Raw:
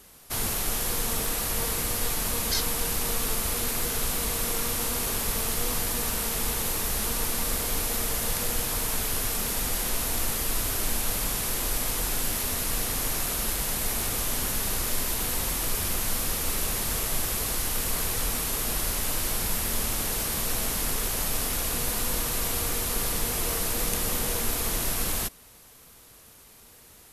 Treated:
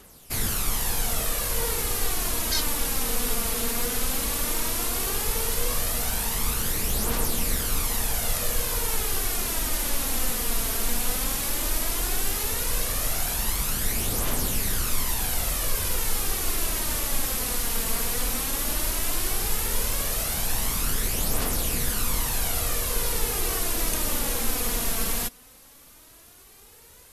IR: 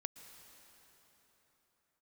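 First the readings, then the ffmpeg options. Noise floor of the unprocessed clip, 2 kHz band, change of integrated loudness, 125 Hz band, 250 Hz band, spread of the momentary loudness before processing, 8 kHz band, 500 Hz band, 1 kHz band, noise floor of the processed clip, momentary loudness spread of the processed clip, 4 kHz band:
−52 dBFS, +1.0 dB, +1.0 dB, +1.5 dB, +1.0 dB, 0 LU, +1.0 dB, +1.0 dB, +1.0 dB, −51 dBFS, 0 LU, +1.0 dB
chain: -af "aphaser=in_gain=1:out_gain=1:delay=4.5:decay=0.44:speed=0.14:type=triangular"

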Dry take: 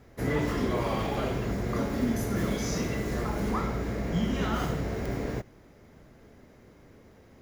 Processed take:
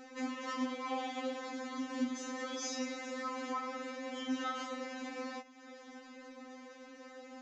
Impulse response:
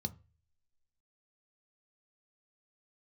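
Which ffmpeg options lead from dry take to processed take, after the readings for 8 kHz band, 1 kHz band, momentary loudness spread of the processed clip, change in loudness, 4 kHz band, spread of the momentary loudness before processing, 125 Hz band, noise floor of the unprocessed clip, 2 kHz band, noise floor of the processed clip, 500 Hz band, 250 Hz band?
−4.0 dB, −5.0 dB, 14 LU, −9.5 dB, −3.5 dB, 4 LU, below −40 dB, −55 dBFS, −6.0 dB, −55 dBFS, −10.5 dB, −9.0 dB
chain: -af "highpass=frequency=460:poles=1,acompressor=threshold=-50dB:ratio=2.5,aresample=16000,aresample=44100,afftfilt=real='re*3.46*eq(mod(b,12),0)':imag='im*3.46*eq(mod(b,12),0)':win_size=2048:overlap=0.75,volume=10dB"

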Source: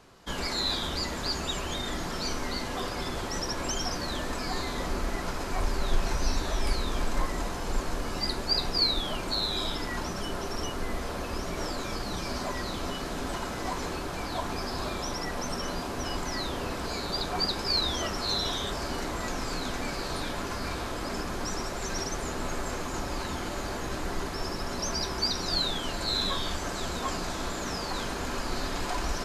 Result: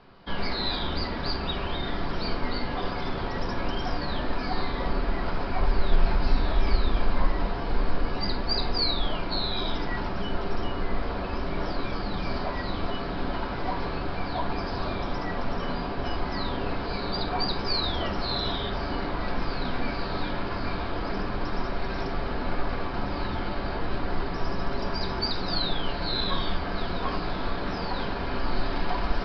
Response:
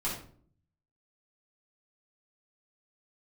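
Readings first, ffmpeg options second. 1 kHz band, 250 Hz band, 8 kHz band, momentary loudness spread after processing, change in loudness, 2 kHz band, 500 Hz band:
+2.5 dB, +3.0 dB, below −25 dB, 4 LU, +1.0 dB, +1.5 dB, +2.5 dB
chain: -filter_complex "[0:a]aresample=11025,aresample=44100,highshelf=frequency=4100:gain=-7,asplit=2[link_01][link_02];[1:a]atrim=start_sample=2205[link_03];[link_02][link_03]afir=irnorm=-1:irlink=0,volume=-9dB[link_04];[link_01][link_04]amix=inputs=2:normalize=0"

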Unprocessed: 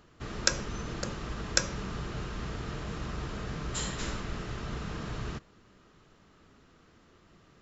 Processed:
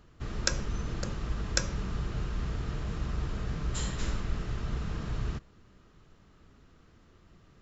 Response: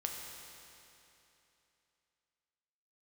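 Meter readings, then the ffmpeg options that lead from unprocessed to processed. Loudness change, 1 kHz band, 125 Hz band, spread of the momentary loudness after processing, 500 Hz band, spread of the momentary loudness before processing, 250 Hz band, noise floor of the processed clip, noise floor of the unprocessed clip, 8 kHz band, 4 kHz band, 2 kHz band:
+0.5 dB, −3.0 dB, +3.5 dB, 5 LU, −2.0 dB, 9 LU, 0.0 dB, −60 dBFS, −61 dBFS, can't be measured, −3.0 dB, −3.0 dB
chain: -af "lowshelf=frequency=120:gain=11.5,volume=-3dB"

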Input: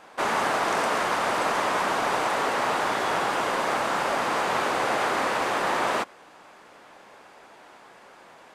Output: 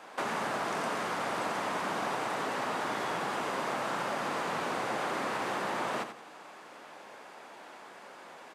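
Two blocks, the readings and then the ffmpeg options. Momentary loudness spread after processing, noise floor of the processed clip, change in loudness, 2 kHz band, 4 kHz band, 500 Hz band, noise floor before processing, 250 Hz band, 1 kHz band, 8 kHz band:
16 LU, −50 dBFS, −8.5 dB, −8.5 dB, −8.5 dB, −8.0 dB, −51 dBFS, −5.0 dB, −8.5 dB, −8.5 dB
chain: -filter_complex "[0:a]highpass=150,acrossover=split=230[link_01][link_02];[link_02]acompressor=threshold=-33dB:ratio=4[link_03];[link_01][link_03]amix=inputs=2:normalize=0,asplit=2[link_04][link_05];[link_05]aecho=0:1:87|174|261|348:0.355|0.11|0.0341|0.0106[link_06];[link_04][link_06]amix=inputs=2:normalize=0"

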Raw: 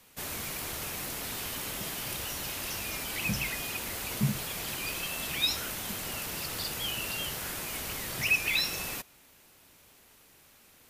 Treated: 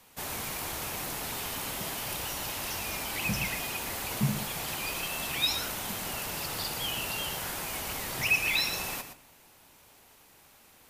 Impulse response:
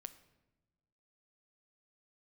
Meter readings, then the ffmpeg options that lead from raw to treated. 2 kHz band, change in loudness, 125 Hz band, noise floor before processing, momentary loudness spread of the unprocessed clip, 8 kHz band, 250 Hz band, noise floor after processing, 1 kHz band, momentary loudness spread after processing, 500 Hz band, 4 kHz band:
+1.0 dB, +0.5 dB, +0.5 dB, −59 dBFS, 7 LU, +0.5 dB, +0.5 dB, −58 dBFS, +4.5 dB, 7 LU, +2.0 dB, +0.5 dB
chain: -filter_complex "[0:a]equalizer=frequency=850:width=1.8:gain=5.5,asplit=2[link_01][link_02];[1:a]atrim=start_sample=2205,adelay=117[link_03];[link_02][link_03]afir=irnorm=-1:irlink=0,volume=-4dB[link_04];[link_01][link_04]amix=inputs=2:normalize=0"

